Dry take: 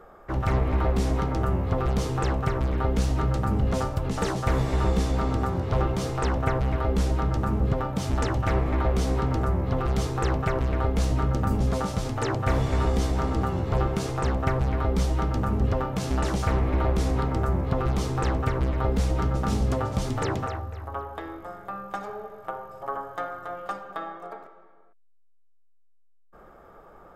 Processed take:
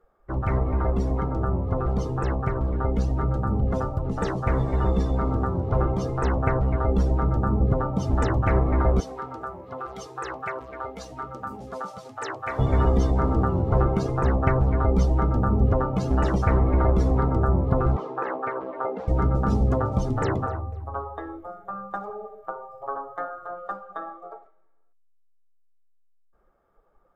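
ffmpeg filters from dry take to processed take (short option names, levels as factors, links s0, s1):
-filter_complex "[0:a]asettb=1/sr,asplit=3[s0][s1][s2];[s0]atrim=end=9.004[s3];[s1]atrim=start=9:end=12.59,asetpts=PTS-STARTPTS,afade=t=in:d=0.004:c=qsin,afade=t=out:st=3.586:d=0.004:c=qsin,highpass=f=1300:p=1[s4];[s2]atrim=start=12.586[s5];[s3][s4]acrossfade=d=0.004:c1=hsin:c2=qsin[s6];[s6][s5]acrossfade=d=0.004:c1=qsin:c2=hsin,asettb=1/sr,asplit=3[s7][s8][s9];[s7]atrim=end=17.964[s10];[s8]atrim=start=17.96:end=19.08,asetpts=PTS-STARTPTS,afade=t=in:d=0.004:c=qsin,afade=t=out:st=1.116:d=0.004:c=qsin,highpass=450,lowpass=2900[s11];[s9]atrim=start=19.076[s12];[s10][s11]acrossfade=d=0.004:c1=hsin:c2=qsin[s13];[s13][s12]acrossfade=d=0.004:c1=qsin:c2=hsin,afftdn=nr=18:nf=-35,bandreject=f=157:t=h:w=4,bandreject=f=314:t=h:w=4,bandreject=f=471:t=h:w=4,bandreject=f=628:t=h:w=4,bandreject=f=785:t=h:w=4,bandreject=f=942:t=h:w=4,bandreject=f=1099:t=h:w=4,bandreject=f=1256:t=h:w=4,dynaudnorm=f=770:g=17:m=1.58"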